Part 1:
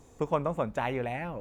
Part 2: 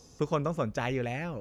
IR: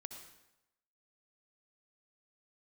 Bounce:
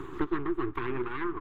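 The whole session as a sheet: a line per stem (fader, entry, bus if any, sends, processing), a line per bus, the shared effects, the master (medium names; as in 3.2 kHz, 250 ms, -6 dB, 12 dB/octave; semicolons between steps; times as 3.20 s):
-1.5 dB, 0.00 s, send -13 dB, reverb removal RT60 1.9 s; tone controls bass +6 dB, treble +9 dB; compression 2.5:1, threshold -33 dBFS, peak gain reduction 8.5 dB
+2.5 dB, 0.7 ms, no send, gate with hold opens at -45 dBFS; auto duck -22 dB, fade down 1.55 s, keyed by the first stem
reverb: on, RT60 0.90 s, pre-delay 57 ms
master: full-wave rectifier; FFT filter 130 Hz 0 dB, 200 Hz -6 dB, 370 Hz +12 dB, 590 Hz -21 dB, 1.1 kHz +10 dB, 3.6 kHz -6 dB, 5.4 kHz -29 dB, 10 kHz -25 dB; three bands compressed up and down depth 70%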